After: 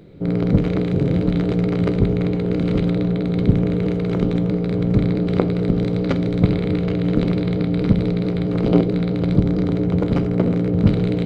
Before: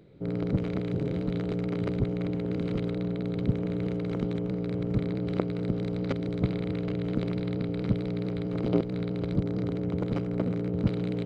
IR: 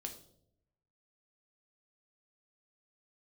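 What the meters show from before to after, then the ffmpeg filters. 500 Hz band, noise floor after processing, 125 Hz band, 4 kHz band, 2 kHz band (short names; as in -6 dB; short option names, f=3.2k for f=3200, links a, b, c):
+9.5 dB, -22 dBFS, +11.0 dB, +10.0 dB, +9.5 dB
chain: -filter_complex "[0:a]asplit=2[a][b];[1:a]atrim=start_sample=2205,lowshelf=f=87:g=8[c];[b][c]afir=irnorm=-1:irlink=0,volume=4dB[d];[a][d]amix=inputs=2:normalize=0,volume=3.5dB"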